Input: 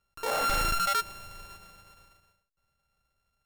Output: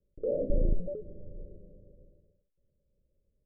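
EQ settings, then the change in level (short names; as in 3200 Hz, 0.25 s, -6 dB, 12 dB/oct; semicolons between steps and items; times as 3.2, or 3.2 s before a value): steep low-pass 580 Hz 96 dB/oct; dynamic EQ 440 Hz, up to -5 dB, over -49 dBFS, Q 3.6; bell 92 Hz -5.5 dB 1.8 oct; +8.5 dB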